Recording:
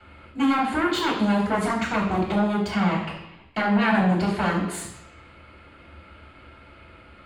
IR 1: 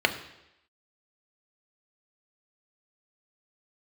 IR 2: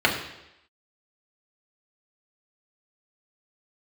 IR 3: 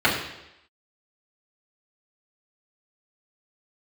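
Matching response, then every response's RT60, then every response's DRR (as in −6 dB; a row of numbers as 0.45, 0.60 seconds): 3; 0.85, 0.85, 0.85 seconds; 5.5, −2.0, −8.0 decibels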